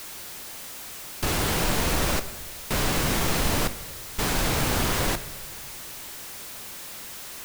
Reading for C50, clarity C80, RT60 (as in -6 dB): 14.0 dB, 15.5 dB, 1.4 s